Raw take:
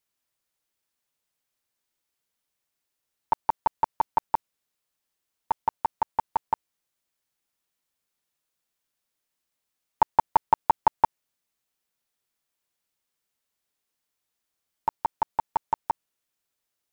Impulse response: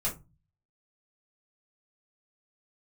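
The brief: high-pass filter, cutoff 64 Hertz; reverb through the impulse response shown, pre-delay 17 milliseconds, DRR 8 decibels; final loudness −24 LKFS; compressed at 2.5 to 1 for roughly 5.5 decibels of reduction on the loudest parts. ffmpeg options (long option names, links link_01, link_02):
-filter_complex "[0:a]highpass=64,acompressor=threshold=-22dB:ratio=2.5,asplit=2[link_01][link_02];[1:a]atrim=start_sample=2205,adelay=17[link_03];[link_02][link_03]afir=irnorm=-1:irlink=0,volume=-13dB[link_04];[link_01][link_04]amix=inputs=2:normalize=0,volume=6.5dB"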